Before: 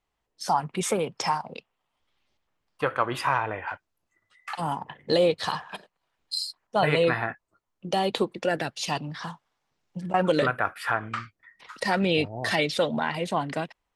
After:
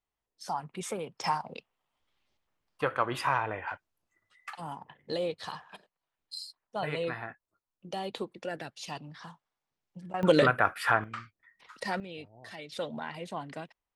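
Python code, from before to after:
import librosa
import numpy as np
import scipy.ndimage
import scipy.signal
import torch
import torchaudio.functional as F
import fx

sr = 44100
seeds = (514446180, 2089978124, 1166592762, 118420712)

y = fx.gain(x, sr, db=fx.steps((0.0, -10.0), (1.24, -3.5), (4.5, -11.0), (10.23, 1.0), (11.04, -8.0), (12.0, -20.0), (12.72, -11.0)))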